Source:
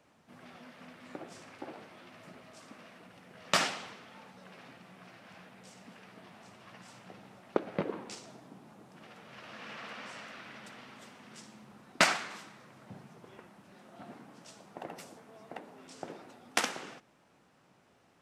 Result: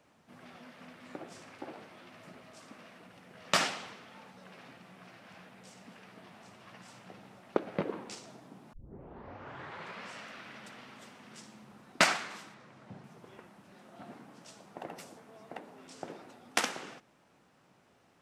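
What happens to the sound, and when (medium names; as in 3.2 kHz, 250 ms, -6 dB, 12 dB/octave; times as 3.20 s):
8.73 s: tape start 1.39 s
12.54–13.04 s: distance through air 51 m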